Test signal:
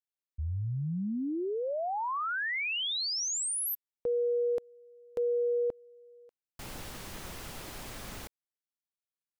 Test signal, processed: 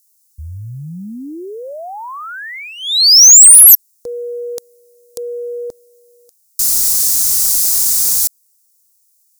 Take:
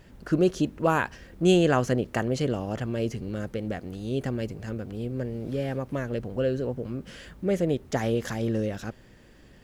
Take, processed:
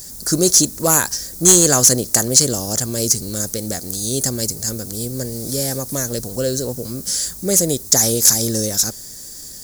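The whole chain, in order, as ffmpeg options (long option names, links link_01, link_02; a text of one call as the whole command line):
ffmpeg -i in.wav -af "aexciter=amount=14.1:drive=9.9:freq=4600,acontrast=49,volume=-1dB" out.wav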